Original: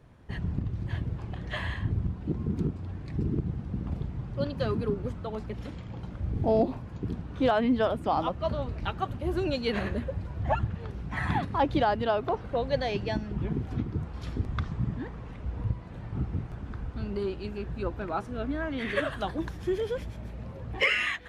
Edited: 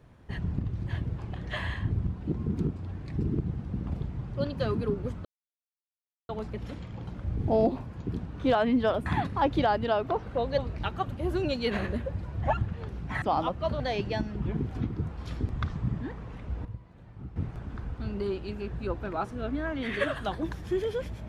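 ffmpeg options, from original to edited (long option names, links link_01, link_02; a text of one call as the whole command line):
ffmpeg -i in.wav -filter_complex "[0:a]asplit=8[link_01][link_02][link_03][link_04][link_05][link_06][link_07][link_08];[link_01]atrim=end=5.25,asetpts=PTS-STARTPTS,afade=type=out:start_time=5.246:duration=0.004:curve=hsin,apad=pad_dur=1.04[link_09];[link_02]atrim=start=5.25:end=8.022,asetpts=PTS-STARTPTS,afade=type=in:duration=0.004:curve=hsin[link_10];[link_03]atrim=start=11.238:end=12.762[link_11];[link_04]atrim=start=8.598:end=11.242[link_12];[link_05]atrim=start=8.018:end=8.602[link_13];[link_06]atrim=start=12.758:end=15.612[link_14];[link_07]atrim=start=15.608:end=16.322,asetpts=PTS-STARTPTS,volume=-10.5dB[link_15];[link_08]atrim=start=16.318[link_16];[link_09][link_10]concat=n=2:v=0:a=1[link_17];[link_17][link_11]acrossfade=duration=0.004:curve1=hsin:curve2=hsin[link_18];[link_18][link_12]acrossfade=duration=0.004:curve1=hsin:curve2=hsin[link_19];[link_19][link_13]acrossfade=duration=0.004:curve1=hsin:curve2=hsin[link_20];[link_20][link_14]acrossfade=duration=0.004:curve1=hsin:curve2=hsin[link_21];[link_21][link_15]acrossfade=duration=0.004:curve1=hsin:curve2=hsin[link_22];[link_22][link_16]acrossfade=duration=0.004:curve1=hsin:curve2=hsin" out.wav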